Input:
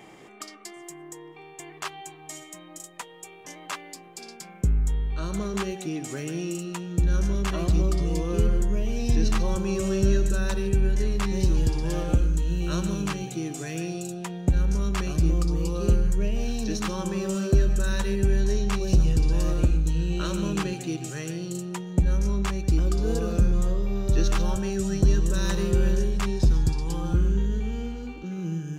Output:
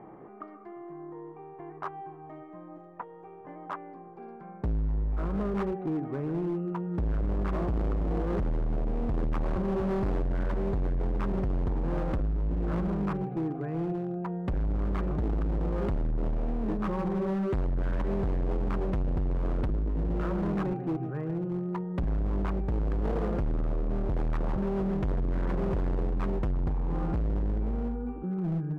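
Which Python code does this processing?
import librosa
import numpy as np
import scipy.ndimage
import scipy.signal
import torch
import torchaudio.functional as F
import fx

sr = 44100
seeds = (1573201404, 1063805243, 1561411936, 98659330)

y = scipy.signal.sosfilt(scipy.signal.butter(4, 1300.0, 'lowpass', fs=sr, output='sos'), x)
y = np.clip(y, -10.0 ** (-27.5 / 20.0), 10.0 ** (-27.5 / 20.0))
y = F.gain(torch.from_numpy(y), 1.5).numpy()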